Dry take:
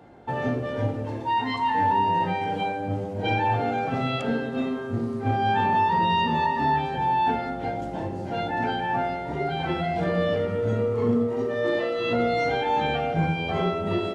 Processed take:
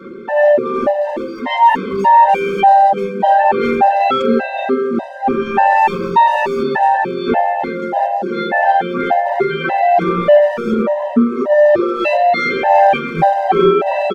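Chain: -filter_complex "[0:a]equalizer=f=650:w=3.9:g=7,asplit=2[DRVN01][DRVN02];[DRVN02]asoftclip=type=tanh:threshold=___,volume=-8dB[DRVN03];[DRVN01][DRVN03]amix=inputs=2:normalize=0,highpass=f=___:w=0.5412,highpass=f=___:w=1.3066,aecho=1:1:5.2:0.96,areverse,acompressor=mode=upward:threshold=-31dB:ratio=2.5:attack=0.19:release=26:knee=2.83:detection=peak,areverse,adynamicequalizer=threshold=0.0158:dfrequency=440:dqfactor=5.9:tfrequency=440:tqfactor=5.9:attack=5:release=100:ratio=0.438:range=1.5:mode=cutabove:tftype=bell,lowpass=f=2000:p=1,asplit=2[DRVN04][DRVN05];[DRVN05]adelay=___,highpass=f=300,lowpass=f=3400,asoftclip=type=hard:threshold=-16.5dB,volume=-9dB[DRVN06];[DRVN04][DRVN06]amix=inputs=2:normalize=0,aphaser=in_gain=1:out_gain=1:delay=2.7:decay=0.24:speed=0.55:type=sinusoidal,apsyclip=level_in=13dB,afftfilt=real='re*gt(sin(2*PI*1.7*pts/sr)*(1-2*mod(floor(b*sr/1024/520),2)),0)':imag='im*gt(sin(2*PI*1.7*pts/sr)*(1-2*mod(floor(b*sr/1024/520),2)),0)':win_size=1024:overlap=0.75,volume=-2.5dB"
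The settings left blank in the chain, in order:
-21.5dB, 230, 230, 370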